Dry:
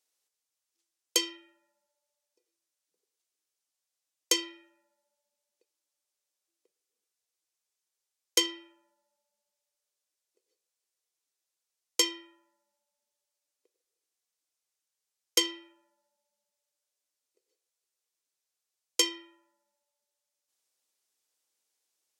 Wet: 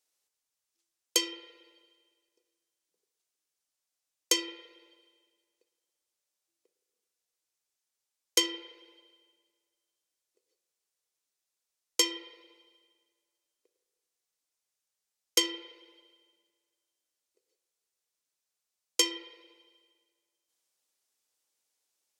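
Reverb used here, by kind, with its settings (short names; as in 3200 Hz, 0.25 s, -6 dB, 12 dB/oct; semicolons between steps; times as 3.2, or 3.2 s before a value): spring tank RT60 1.7 s, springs 34/56 ms, chirp 65 ms, DRR 13 dB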